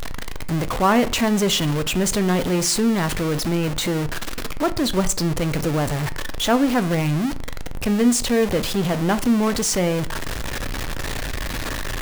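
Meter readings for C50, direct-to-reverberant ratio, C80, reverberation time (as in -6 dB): 17.5 dB, 11.5 dB, 21.5 dB, 0.55 s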